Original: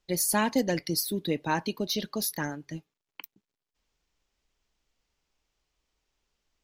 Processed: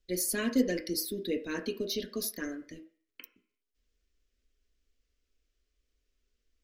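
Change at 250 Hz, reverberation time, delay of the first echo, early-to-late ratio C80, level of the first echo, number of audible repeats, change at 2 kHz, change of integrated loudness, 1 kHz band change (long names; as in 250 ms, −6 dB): −2.0 dB, 0.50 s, no echo audible, 16.0 dB, no echo audible, no echo audible, −5.0 dB, −4.0 dB, −16.5 dB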